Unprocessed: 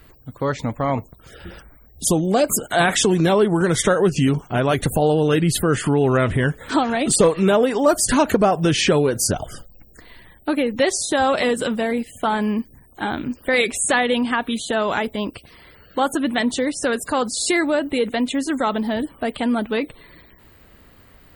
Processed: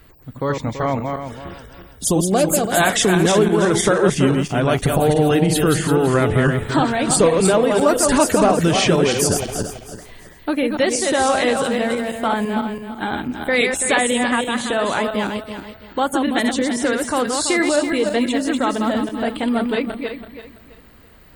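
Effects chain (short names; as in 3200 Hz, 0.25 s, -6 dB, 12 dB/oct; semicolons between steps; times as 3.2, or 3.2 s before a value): regenerating reverse delay 0.166 s, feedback 53%, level -4 dB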